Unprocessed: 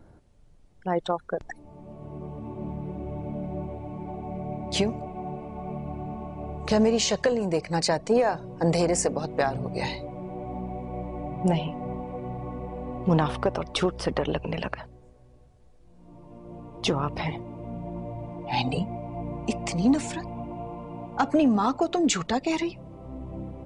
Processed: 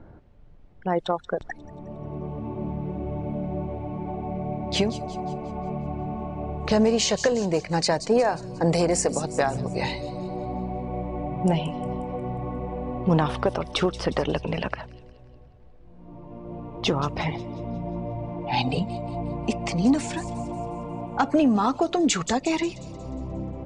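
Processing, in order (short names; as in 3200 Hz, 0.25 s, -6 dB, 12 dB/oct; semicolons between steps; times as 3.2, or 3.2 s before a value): in parallel at -1 dB: compressor, threshold -35 dBFS, peak gain reduction 17 dB; on the sum: low-pass opened by the level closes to 2500 Hz, open at -17 dBFS; thin delay 0.179 s, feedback 49%, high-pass 5400 Hz, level -7.5 dB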